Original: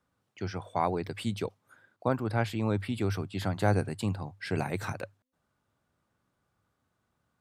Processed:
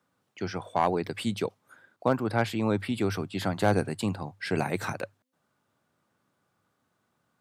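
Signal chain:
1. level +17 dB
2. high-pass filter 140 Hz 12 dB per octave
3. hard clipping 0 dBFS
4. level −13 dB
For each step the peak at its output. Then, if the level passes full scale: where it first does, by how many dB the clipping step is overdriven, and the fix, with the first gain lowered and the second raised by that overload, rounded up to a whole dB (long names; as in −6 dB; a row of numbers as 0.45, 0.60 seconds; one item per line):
+5.0, +4.0, 0.0, −13.0 dBFS
step 1, 4.0 dB
step 1 +13 dB, step 4 −9 dB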